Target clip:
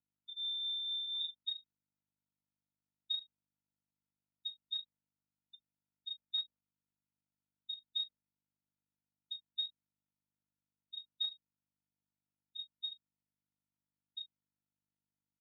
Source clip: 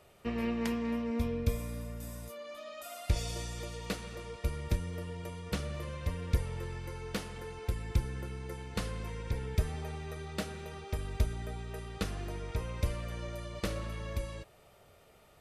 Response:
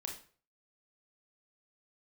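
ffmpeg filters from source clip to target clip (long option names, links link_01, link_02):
-filter_complex "[0:a]equalizer=frequency=1100:width=0.54:gain=6,asplit=2[link_01][link_02];[link_02]adelay=35,volume=-2dB[link_03];[link_01][link_03]amix=inputs=2:normalize=0,lowpass=frequency=3200:width_type=q:width=0.5098,lowpass=frequency=3200:width_type=q:width=0.6013,lowpass=frequency=3200:width_type=q:width=0.9,lowpass=frequency=3200:width_type=q:width=2.563,afreqshift=-3800,afftfilt=real='re*gte(hypot(re,im),0.355)':imag='im*gte(hypot(re,im),0.355)':win_size=1024:overlap=0.75,acrusher=bits=6:mode=log:mix=0:aa=0.000001,bandreject=frequency=50:width_type=h:width=6,bandreject=frequency=100:width_type=h:width=6,bandreject=frequency=150:width_type=h:width=6,bandreject=frequency=200:width_type=h:width=6,bandreject=frequency=250:width_type=h:width=6,bandreject=frequency=300:width_type=h:width=6,asplit=2[link_04][link_05];[link_05]aecho=0:1:18|37:0.211|0.141[link_06];[link_04][link_06]amix=inputs=2:normalize=0,aeval=exprs='val(0)+0.000562*(sin(2*PI*50*n/s)+sin(2*PI*2*50*n/s)/2+sin(2*PI*3*50*n/s)/3+sin(2*PI*4*50*n/s)/4+sin(2*PI*5*50*n/s)/5)':channel_layout=same,acrossover=split=260 2500:gain=0.0631 1 0.141[link_07][link_08][link_09];[link_07][link_08][link_09]amix=inputs=3:normalize=0,afftdn=noise_reduction=15:noise_floor=-56,volume=1.5dB" -ar 48000 -c:a libopus -b:a 256k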